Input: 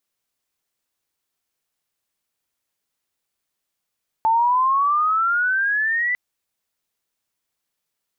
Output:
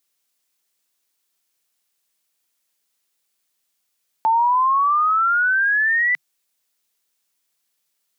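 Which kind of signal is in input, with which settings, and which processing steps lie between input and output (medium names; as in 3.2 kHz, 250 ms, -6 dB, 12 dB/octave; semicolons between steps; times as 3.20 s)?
sweep logarithmic 880 Hz -> 2 kHz -14 dBFS -> -18.5 dBFS 1.90 s
elliptic high-pass 150 Hz; treble shelf 2.1 kHz +9 dB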